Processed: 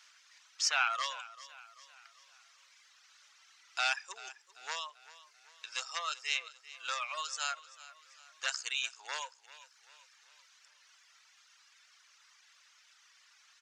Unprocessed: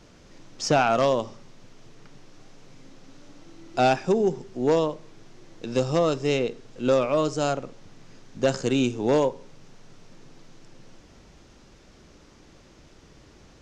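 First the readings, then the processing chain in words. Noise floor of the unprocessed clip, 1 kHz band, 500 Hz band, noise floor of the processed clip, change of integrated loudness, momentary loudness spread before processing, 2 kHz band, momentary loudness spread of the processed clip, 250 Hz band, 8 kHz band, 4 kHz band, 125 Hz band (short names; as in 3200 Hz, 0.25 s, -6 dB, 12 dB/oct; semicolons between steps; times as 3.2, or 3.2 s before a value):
-53 dBFS, -11.5 dB, -30.5 dB, -65 dBFS, -11.5 dB, 10 LU, -1.5 dB, 22 LU, under -40 dB, -1.0 dB, -1.0 dB, under -40 dB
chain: HPF 1300 Hz 24 dB/oct; reverb removal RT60 1.3 s; on a send: feedback echo 0.389 s, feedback 48%, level -17.5 dB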